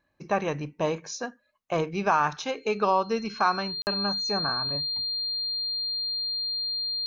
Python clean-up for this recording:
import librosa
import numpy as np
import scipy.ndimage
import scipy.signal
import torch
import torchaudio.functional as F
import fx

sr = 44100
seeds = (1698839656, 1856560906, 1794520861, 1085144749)

y = fx.notch(x, sr, hz=4200.0, q=30.0)
y = fx.fix_interpolate(y, sr, at_s=(3.82,), length_ms=49.0)